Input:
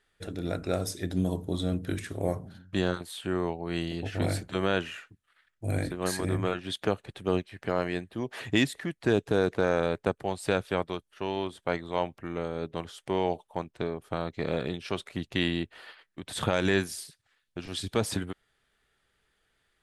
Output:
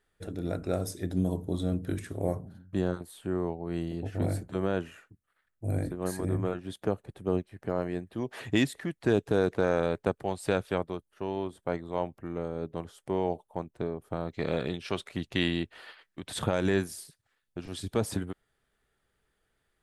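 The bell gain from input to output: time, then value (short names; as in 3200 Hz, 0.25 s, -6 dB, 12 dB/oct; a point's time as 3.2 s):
bell 3300 Hz 2.7 oct
-7.5 dB
from 2.41 s -13.5 dB
from 8.07 s -4 dB
from 10.78 s -11 dB
from 14.29 s -0.5 dB
from 16.39 s -7.5 dB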